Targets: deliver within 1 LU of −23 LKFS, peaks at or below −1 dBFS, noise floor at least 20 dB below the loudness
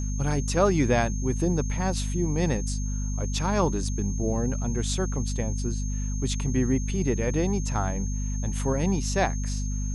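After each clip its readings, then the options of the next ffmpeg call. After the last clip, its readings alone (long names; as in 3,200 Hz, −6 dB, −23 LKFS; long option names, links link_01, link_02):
mains hum 50 Hz; hum harmonics up to 250 Hz; level of the hum −26 dBFS; interfering tone 6,400 Hz; level of the tone −39 dBFS; integrated loudness −27.0 LKFS; sample peak −8.0 dBFS; target loudness −23.0 LKFS
→ -af "bandreject=frequency=50:width_type=h:width=6,bandreject=frequency=100:width_type=h:width=6,bandreject=frequency=150:width_type=h:width=6,bandreject=frequency=200:width_type=h:width=6,bandreject=frequency=250:width_type=h:width=6"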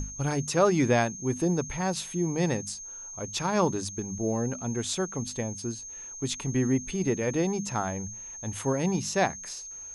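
mains hum none found; interfering tone 6,400 Hz; level of the tone −39 dBFS
→ -af "bandreject=frequency=6400:width=30"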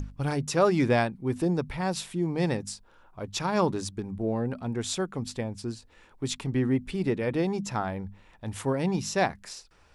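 interfering tone none found; integrated loudness −29.0 LKFS; sample peak −11.0 dBFS; target loudness −23.0 LKFS
→ -af "volume=6dB"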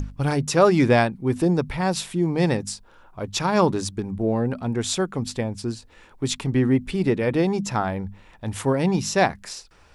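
integrated loudness −23.0 LKFS; sample peak −5.0 dBFS; background noise floor −52 dBFS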